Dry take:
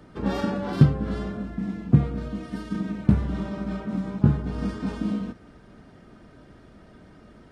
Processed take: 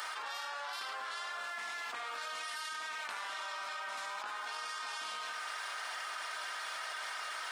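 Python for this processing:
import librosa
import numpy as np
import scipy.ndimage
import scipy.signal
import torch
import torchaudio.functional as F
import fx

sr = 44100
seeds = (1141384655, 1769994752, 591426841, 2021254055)

p1 = scipy.signal.sosfilt(scipy.signal.butter(4, 940.0, 'highpass', fs=sr, output='sos'), x)
p2 = fx.high_shelf(p1, sr, hz=3100.0, db=7.5)
p3 = p2 + fx.echo_single(p2, sr, ms=77, db=-11.5, dry=0)
p4 = fx.env_flatten(p3, sr, amount_pct=100)
y = F.gain(torch.from_numpy(p4), -8.5).numpy()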